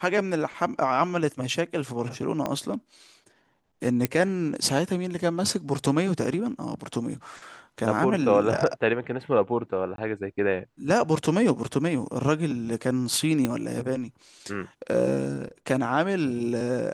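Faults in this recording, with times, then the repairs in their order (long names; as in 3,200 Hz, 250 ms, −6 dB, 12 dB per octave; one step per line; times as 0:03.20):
0:02.46: click −14 dBFS
0:04.05: click −8 dBFS
0:09.96–0:09.98: drop-out 22 ms
0:13.45: click −11 dBFS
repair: click removal
repair the gap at 0:09.96, 22 ms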